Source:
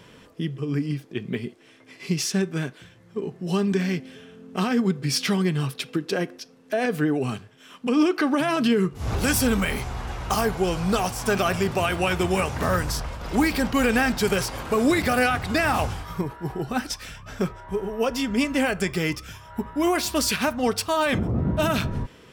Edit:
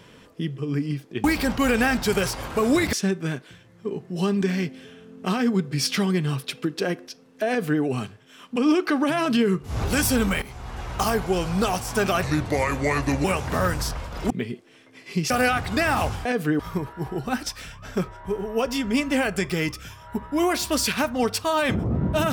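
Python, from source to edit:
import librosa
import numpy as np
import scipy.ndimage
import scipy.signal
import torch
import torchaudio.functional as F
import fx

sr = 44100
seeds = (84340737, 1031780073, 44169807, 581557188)

y = fx.edit(x, sr, fx.swap(start_s=1.24, length_s=1.0, other_s=13.39, other_length_s=1.69),
    fx.duplicate(start_s=6.79, length_s=0.34, to_s=16.03),
    fx.fade_in_from(start_s=9.73, length_s=0.48, floor_db=-14.5),
    fx.speed_span(start_s=11.54, length_s=0.79, speed=0.78), tone=tone)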